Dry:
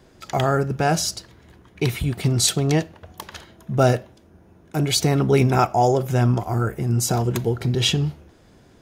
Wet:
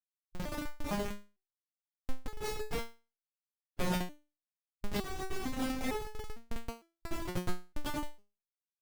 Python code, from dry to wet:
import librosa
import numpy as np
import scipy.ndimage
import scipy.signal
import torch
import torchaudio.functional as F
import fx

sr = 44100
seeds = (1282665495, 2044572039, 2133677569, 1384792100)

y = fx.rev_freeverb(x, sr, rt60_s=0.63, hf_ratio=0.7, predelay_ms=25, drr_db=0.0)
y = fx.schmitt(y, sr, flips_db=-11.0)
y = fx.hpss(y, sr, part='harmonic', gain_db=-16)
y = fx.resonator_held(y, sr, hz=2.2, low_hz=180.0, high_hz=430.0)
y = y * librosa.db_to_amplitude(5.5)